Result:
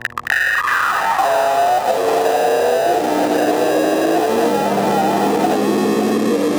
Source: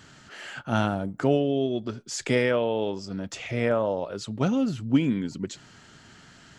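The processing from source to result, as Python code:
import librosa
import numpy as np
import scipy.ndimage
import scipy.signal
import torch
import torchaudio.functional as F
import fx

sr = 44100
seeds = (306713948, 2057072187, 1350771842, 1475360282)

p1 = fx.freq_compress(x, sr, knee_hz=1400.0, ratio=4.0)
p2 = fx.peak_eq(p1, sr, hz=480.0, db=4.0, octaves=1.9)
p3 = fx.fuzz(p2, sr, gain_db=48.0, gate_db=-42.0)
p4 = fx.sample_hold(p3, sr, seeds[0], rate_hz=1100.0, jitter_pct=0)
p5 = fx.filter_sweep_highpass(p4, sr, from_hz=1800.0, to_hz=720.0, start_s=0.66, end_s=1.29, q=7.1)
p6 = fx.dmg_buzz(p5, sr, base_hz=120.0, harmonics=9, level_db=-59.0, tilt_db=-4, odd_only=False)
p7 = p6 + fx.echo_single(p6, sr, ms=573, db=-9.0, dry=0)
p8 = fx.echo_pitch(p7, sr, ms=100, semitones=-7, count=3, db_per_echo=-3.0)
p9 = fx.band_squash(p8, sr, depth_pct=100)
y = F.gain(torch.from_numpy(p9), -8.5).numpy()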